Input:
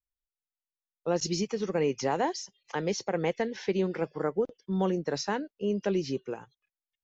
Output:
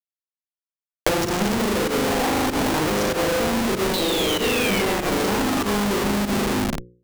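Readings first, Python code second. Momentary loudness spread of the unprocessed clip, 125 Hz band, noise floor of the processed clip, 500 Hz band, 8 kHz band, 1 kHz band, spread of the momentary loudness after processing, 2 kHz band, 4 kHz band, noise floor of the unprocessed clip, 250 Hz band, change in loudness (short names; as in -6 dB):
6 LU, +7.5 dB, under -85 dBFS, +6.5 dB, n/a, +10.5 dB, 2 LU, +14.5 dB, +15.0 dB, under -85 dBFS, +10.0 dB, +9.5 dB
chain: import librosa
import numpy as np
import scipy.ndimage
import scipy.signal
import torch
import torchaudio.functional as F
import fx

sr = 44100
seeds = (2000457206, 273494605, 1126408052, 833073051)

p1 = fx.dynamic_eq(x, sr, hz=1000.0, q=2.5, threshold_db=-44.0, ratio=4.0, max_db=4)
p2 = p1 + fx.room_flutter(p1, sr, wall_m=6.7, rt60_s=1.4, dry=0)
p3 = fx.spec_paint(p2, sr, seeds[0], shape='fall', start_s=3.93, length_s=1.91, low_hz=1000.0, high_hz=4100.0, level_db=-26.0)
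p4 = fx.env_flanger(p3, sr, rest_ms=9.0, full_db=-22.5)
p5 = fx.low_shelf_res(p4, sr, hz=150.0, db=-13.5, q=3.0)
p6 = fx.echo_multitap(p5, sr, ms=(51, 55, 121, 406), db=(-10.0, -10.0, -13.0, -8.0))
p7 = fx.leveller(p6, sr, passes=3)
p8 = fx.schmitt(p7, sr, flips_db=-22.0)
p9 = fx.volume_shaper(p8, sr, bpm=96, per_beat=1, depth_db=-13, release_ms=103.0, shape='fast start')
p10 = fx.hum_notches(p9, sr, base_hz=60, count=9)
p11 = fx.band_squash(p10, sr, depth_pct=100)
y = F.gain(torch.from_numpy(p11), -5.0).numpy()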